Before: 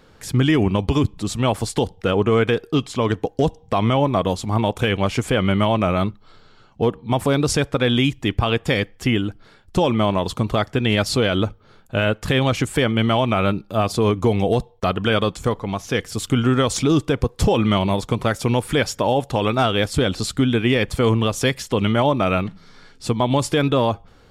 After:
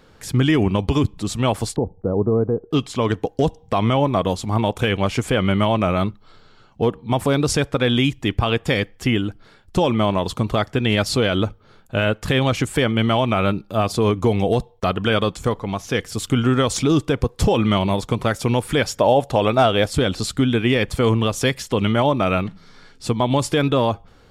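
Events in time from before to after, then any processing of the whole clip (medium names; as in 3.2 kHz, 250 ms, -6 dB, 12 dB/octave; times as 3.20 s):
1.76–2.71 s: Bessel low-pass 610 Hz, order 6
18.99–19.93 s: peaking EQ 630 Hz +6.5 dB 0.63 oct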